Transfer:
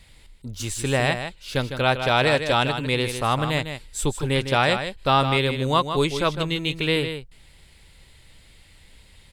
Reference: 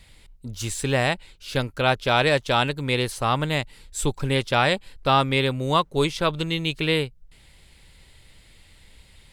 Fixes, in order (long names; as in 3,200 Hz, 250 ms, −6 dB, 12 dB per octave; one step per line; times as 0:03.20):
echo removal 155 ms −8.5 dB